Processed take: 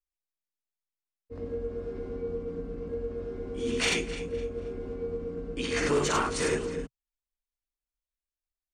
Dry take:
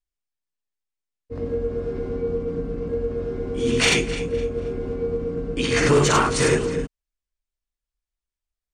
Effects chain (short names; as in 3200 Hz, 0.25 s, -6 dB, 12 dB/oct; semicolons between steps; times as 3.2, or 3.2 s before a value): bell 130 Hz -14.5 dB 0.23 oct; gain -8.5 dB